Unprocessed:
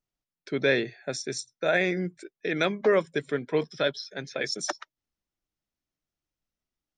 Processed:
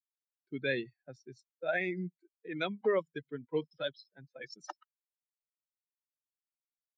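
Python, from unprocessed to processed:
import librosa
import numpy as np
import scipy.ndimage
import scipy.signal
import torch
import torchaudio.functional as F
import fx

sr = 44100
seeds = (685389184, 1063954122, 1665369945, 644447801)

y = fx.bin_expand(x, sr, power=2.0)
y = fx.env_lowpass(y, sr, base_hz=1000.0, full_db=-23.0)
y = y * librosa.db_to_amplitude(-5.0)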